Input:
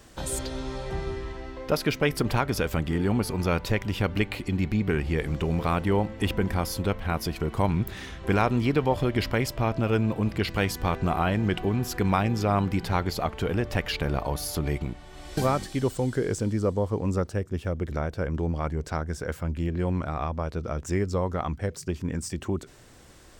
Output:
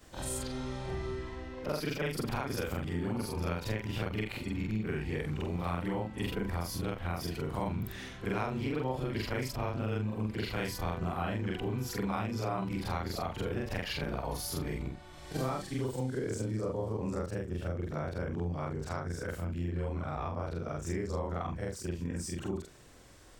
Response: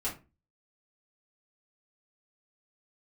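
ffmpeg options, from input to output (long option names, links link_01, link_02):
-af "afftfilt=real='re':imag='-im':win_size=4096:overlap=0.75,acompressor=threshold=-32dB:ratio=2.5"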